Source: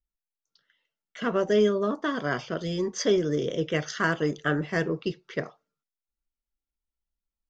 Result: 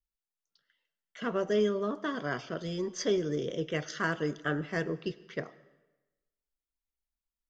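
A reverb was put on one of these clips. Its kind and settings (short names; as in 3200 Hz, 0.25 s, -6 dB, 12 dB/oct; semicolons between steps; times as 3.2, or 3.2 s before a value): digital reverb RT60 1.1 s, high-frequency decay 0.9×, pre-delay 60 ms, DRR 19 dB; gain -5.5 dB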